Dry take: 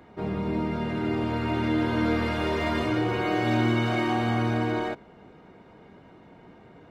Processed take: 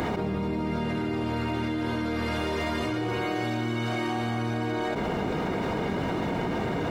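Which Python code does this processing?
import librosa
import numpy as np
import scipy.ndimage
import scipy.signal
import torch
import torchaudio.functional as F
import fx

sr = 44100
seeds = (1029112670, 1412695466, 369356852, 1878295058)

y = fx.bass_treble(x, sr, bass_db=0, treble_db=6)
y = fx.env_flatten(y, sr, amount_pct=100)
y = y * 10.0 ** (-7.0 / 20.0)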